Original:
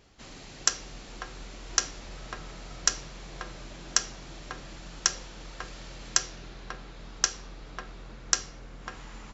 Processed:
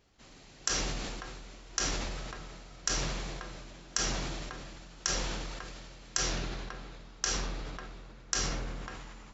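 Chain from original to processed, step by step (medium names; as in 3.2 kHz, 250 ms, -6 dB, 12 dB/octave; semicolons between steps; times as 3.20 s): decay stretcher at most 23 dB/s; trim -8.5 dB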